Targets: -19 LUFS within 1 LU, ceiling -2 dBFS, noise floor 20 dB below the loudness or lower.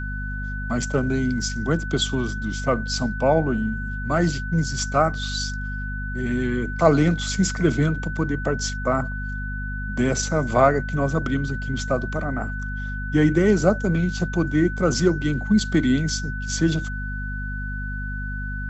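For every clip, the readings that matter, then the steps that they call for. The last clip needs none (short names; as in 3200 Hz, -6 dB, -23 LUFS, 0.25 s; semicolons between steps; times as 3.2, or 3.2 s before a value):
hum 50 Hz; harmonics up to 250 Hz; hum level -27 dBFS; steady tone 1500 Hz; tone level -32 dBFS; loudness -23.5 LUFS; peak -4.5 dBFS; loudness target -19.0 LUFS
-> de-hum 50 Hz, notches 5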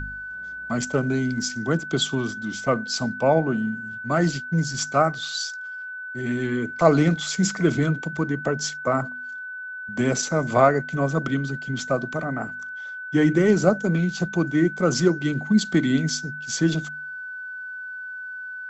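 hum none; steady tone 1500 Hz; tone level -32 dBFS
-> notch 1500 Hz, Q 30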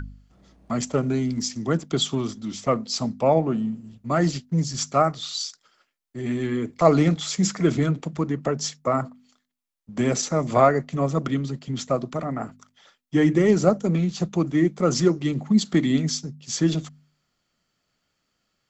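steady tone none; loudness -23.5 LUFS; peak -4.5 dBFS; loudness target -19.0 LUFS
-> gain +4.5 dB; limiter -2 dBFS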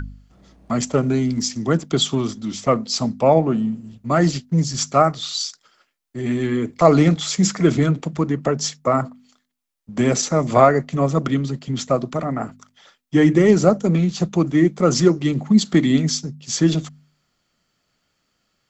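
loudness -19.0 LUFS; peak -2.0 dBFS; noise floor -71 dBFS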